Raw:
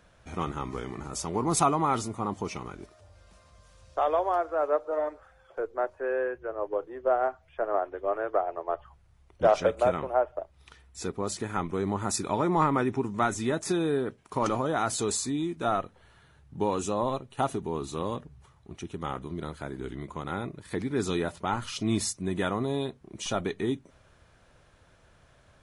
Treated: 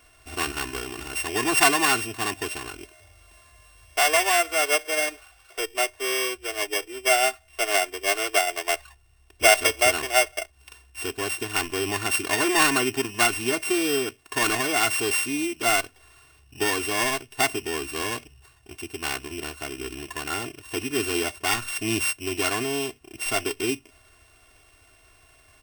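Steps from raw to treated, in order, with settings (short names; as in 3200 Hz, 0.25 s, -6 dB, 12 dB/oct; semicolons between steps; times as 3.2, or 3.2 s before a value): sample sorter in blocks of 16 samples; tilt shelf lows -4.5 dB, about 880 Hz; comb 2.8 ms, depth 98%; gain +1 dB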